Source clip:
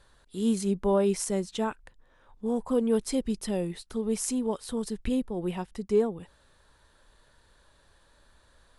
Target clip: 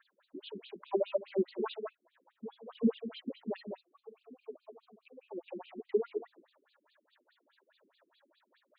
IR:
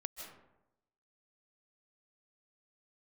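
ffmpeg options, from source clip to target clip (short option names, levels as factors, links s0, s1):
-filter_complex "[0:a]asettb=1/sr,asplit=3[s0][s1][s2];[s0]atrim=end=0.904[s3];[s1]atrim=start=0.9:end=1.4,asetpts=PTS-STARTPTS,afade=t=in:d=0.004:c=qsin,afade=t=out:st=0.496:d=0.004:c=qsin,acrossover=split=3200[s4][s5];[s5]acompressor=threshold=0.00794:ratio=4:attack=1:release=60[s6];[s4][s6]amix=inputs=2:normalize=0[s7];[s2]atrim=start=1.396[s8];[s3][s7]acrossfade=d=0.004:c1=hsin:c2=qsin[s9];[s9][s8]acrossfade=d=0.004:c1=qsin:c2=hsin,asplit=3[s10][s11][s12];[s10]afade=t=out:st=3.56:d=0.02[s13];[s11]asplit=3[s14][s15][s16];[s14]bandpass=f=730:t=q:w=8,volume=1[s17];[s15]bandpass=f=1090:t=q:w=8,volume=0.501[s18];[s16]bandpass=f=2440:t=q:w=8,volume=0.355[s19];[s17][s18][s19]amix=inputs=3:normalize=0,afade=t=in:st=3.56:d=0.02,afade=t=out:st=5.28:d=0.02[s20];[s12]afade=t=in:st=5.28:d=0.02[s21];[s13][s20][s21]amix=inputs=3:normalize=0,aphaser=in_gain=1:out_gain=1:delay=3.6:decay=0.67:speed=1.4:type=sinusoidal[s22];[1:a]atrim=start_sample=2205,afade=t=out:st=0.25:d=0.01,atrim=end_sample=11466[s23];[s22][s23]afir=irnorm=-1:irlink=0,afftfilt=real='re*between(b*sr/1024,280*pow(3500/280,0.5+0.5*sin(2*PI*4.8*pts/sr))/1.41,280*pow(3500/280,0.5+0.5*sin(2*PI*4.8*pts/sr))*1.41)':imag='im*between(b*sr/1024,280*pow(3500/280,0.5+0.5*sin(2*PI*4.8*pts/sr))/1.41,280*pow(3500/280,0.5+0.5*sin(2*PI*4.8*pts/sr))*1.41)':win_size=1024:overlap=0.75"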